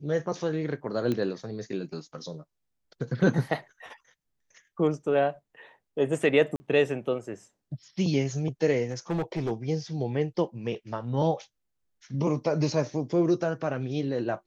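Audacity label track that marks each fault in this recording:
1.120000	1.120000	click −17 dBFS
6.560000	6.600000	drop-out 40 ms
8.910000	9.520000	clipping −24.5 dBFS

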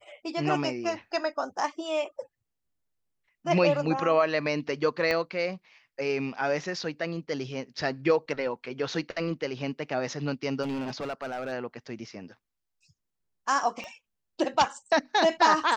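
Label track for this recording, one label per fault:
5.110000	5.110000	click −15 dBFS
10.620000	11.530000	clipping −28.5 dBFS
13.840000	13.840000	click −26 dBFS

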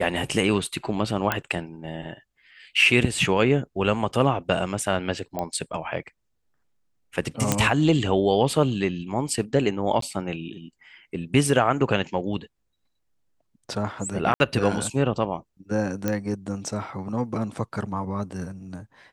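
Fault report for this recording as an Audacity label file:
1.320000	1.320000	click −8 dBFS
5.390000	5.390000	click −15 dBFS
7.520000	7.520000	click −5 dBFS
10.010000	10.020000	drop-out 13 ms
14.340000	14.400000	drop-out 60 ms
16.080000	16.080000	click −11 dBFS

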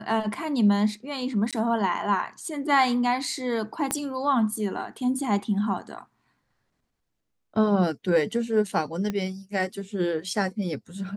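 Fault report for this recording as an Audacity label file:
1.510000	1.530000	drop-out 17 ms
3.910000	3.910000	click −11 dBFS
9.100000	9.100000	click −16 dBFS

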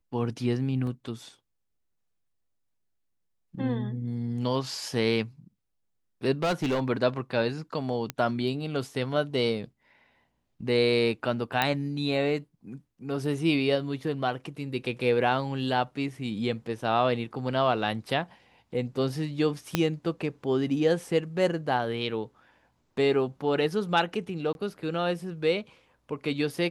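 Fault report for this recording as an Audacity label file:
0.870000	0.870000	drop-out 2 ms
6.420000	6.800000	clipping −22.5 dBFS
8.100000	8.100000	click −14 dBFS
11.620000	11.620000	click −10 dBFS
19.750000	19.750000	click −8 dBFS
24.530000	24.550000	drop-out 21 ms

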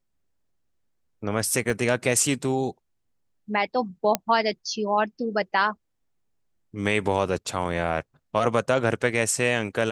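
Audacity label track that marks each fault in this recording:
1.700000	1.700000	drop-out 3.3 ms
4.150000	4.150000	click −5 dBFS

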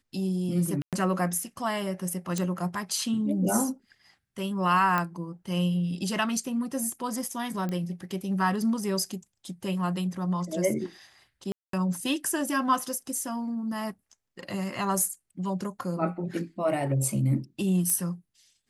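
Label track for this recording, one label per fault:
0.820000	0.930000	drop-out 107 ms
2.380000	2.380000	click −15 dBFS
4.980000	4.980000	click −14 dBFS
7.690000	7.690000	click −20 dBFS
11.520000	11.730000	drop-out 213 ms
17.900000	17.900000	click −14 dBFS

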